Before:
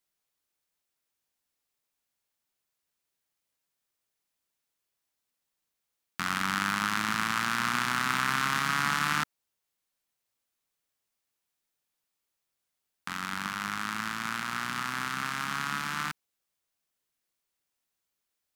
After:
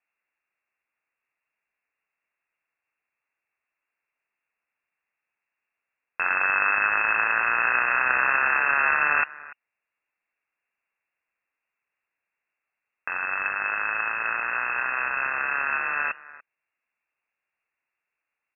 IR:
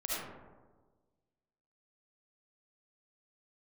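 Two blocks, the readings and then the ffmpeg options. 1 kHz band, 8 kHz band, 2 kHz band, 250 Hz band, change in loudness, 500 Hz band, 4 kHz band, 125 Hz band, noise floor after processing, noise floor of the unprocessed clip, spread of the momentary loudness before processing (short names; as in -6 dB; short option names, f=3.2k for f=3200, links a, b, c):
+4.5 dB, under -40 dB, +9.0 dB, -11.0 dB, +7.0 dB, +10.0 dB, under -25 dB, under -10 dB, under -85 dBFS, -84 dBFS, 9 LU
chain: -filter_complex "[0:a]asplit=2[a][b];[b]adelay=290,highpass=300,lowpass=3.4k,asoftclip=type=hard:threshold=-20dB,volume=-18dB[c];[a][c]amix=inputs=2:normalize=0,lowpass=f=2.4k:t=q:w=0.5098,lowpass=f=2.4k:t=q:w=0.6013,lowpass=f=2.4k:t=q:w=0.9,lowpass=f=2.4k:t=q:w=2.563,afreqshift=-2800,crystalizer=i=8.5:c=0"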